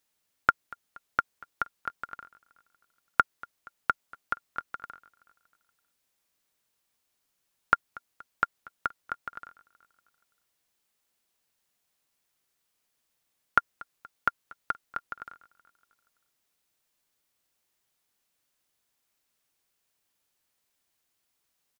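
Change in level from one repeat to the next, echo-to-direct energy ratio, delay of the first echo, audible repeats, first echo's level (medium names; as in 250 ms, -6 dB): -5.0 dB, -21.0 dB, 237 ms, 3, -22.5 dB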